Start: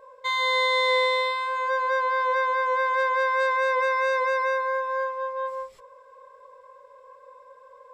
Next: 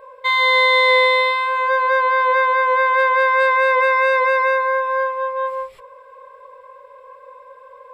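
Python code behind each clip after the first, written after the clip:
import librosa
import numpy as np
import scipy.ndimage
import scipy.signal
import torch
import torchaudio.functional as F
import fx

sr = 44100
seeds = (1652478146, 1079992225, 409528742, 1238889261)

y = fx.graphic_eq_15(x, sr, hz=(250, 2500, 6300), db=(-6, 5, -12))
y = y * 10.0 ** (7.5 / 20.0)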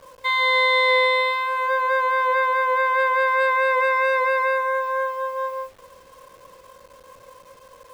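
y = fx.delta_hold(x, sr, step_db=-41.5)
y = y * 10.0 ** (-4.0 / 20.0)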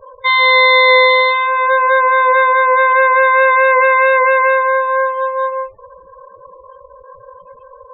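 y = fx.spec_topn(x, sr, count=16)
y = y * 10.0 ** (9.0 / 20.0)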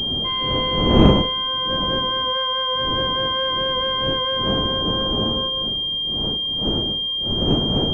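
y = fx.dmg_wind(x, sr, seeds[0], corner_hz=330.0, level_db=-11.0)
y = fx.pwm(y, sr, carrier_hz=3200.0)
y = y * 10.0 ** (-13.0 / 20.0)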